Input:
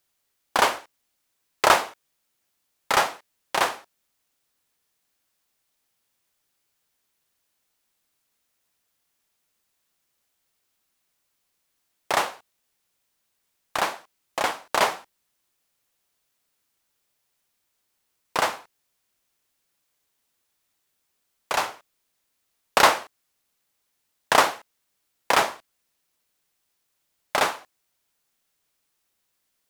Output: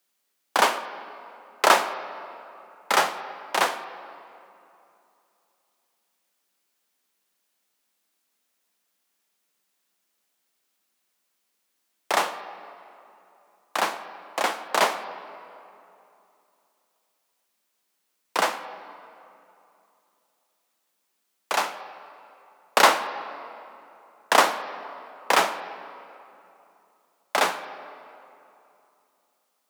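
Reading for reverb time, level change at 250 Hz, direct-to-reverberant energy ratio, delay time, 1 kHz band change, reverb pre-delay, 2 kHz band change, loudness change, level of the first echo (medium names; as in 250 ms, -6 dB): 2.8 s, +0.5 dB, 11.0 dB, no echo, +0.5 dB, 7 ms, +0.5 dB, -0.5 dB, no echo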